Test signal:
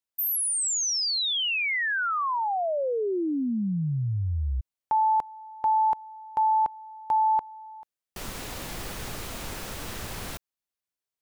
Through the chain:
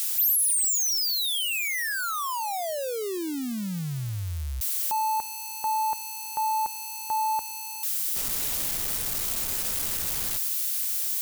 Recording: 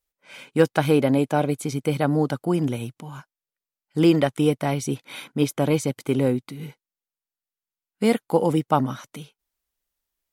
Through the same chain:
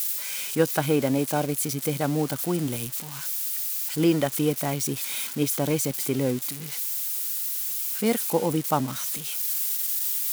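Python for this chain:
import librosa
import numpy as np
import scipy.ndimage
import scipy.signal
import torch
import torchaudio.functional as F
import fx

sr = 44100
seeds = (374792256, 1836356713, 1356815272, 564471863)

y = x + 0.5 * 10.0 ** (-18.5 / 20.0) * np.diff(np.sign(x), prepend=np.sign(x[:1]))
y = F.gain(torch.from_numpy(y), -4.0).numpy()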